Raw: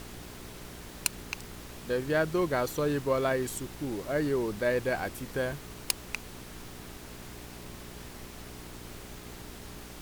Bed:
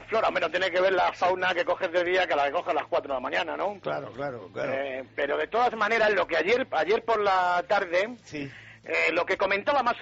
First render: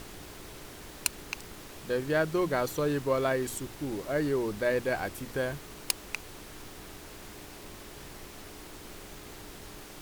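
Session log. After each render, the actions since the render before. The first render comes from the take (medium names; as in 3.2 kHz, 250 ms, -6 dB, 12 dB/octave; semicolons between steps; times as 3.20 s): de-hum 60 Hz, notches 4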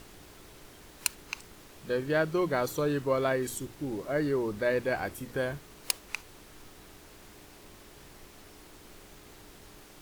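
noise print and reduce 6 dB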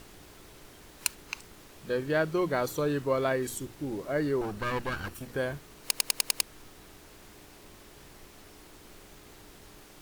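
4.41–5.28 s: comb filter that takes the minimum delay 0.71 ms; 5.81 s: stutter in place 0.10 s, 6 plays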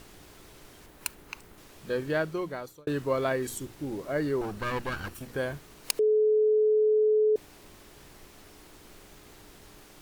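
0.86–1.58 s: peaking EQ 5.5 kHz -7 dB 2.2 oct; 2.08–2.87 s: fade out; 5.99–7.36 s: bleep 429 Hz -19.5 dBFS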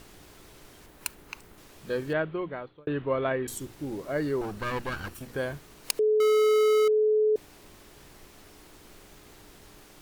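2.13–3.48 s: steep low-pass 3.5 kHz 48 dB/octave; 6.20–6.88 s: power-law waveshaper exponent 0.35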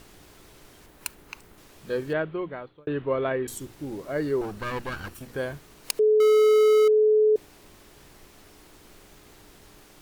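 dynamic bell 410 Hz, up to +4 dB, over -33 dBFS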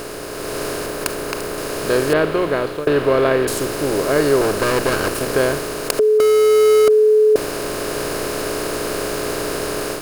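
spectral levelling over time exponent 0.4; level rider gain up to 7.5 dB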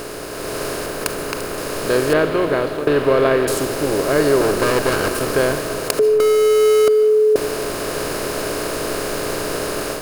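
algorithmic reverb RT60 2.3 s, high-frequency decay 0.3×, pre-delay 105 ms, DRR 10.5 dB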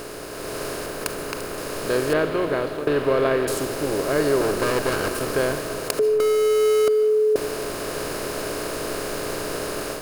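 trim -5 dB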